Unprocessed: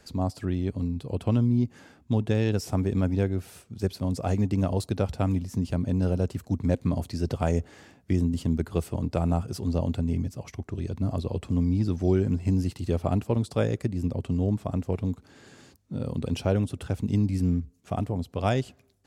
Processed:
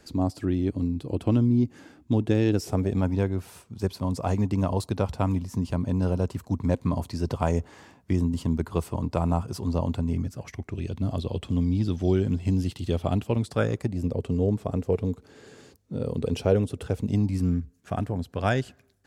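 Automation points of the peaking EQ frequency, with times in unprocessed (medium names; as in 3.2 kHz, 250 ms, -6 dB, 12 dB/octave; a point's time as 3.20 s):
peaking EQ +9.5 dB 0.41 oct
2.58 s 310 Hz
3.08 s 1 kHz
10.05 s 1 kHz
10.99 s 3.3 kHz
13.23 s 3.3 kHz
14.13 s 450 Hz
16.96 s 450 Hz
17.56 s 1.6 kHz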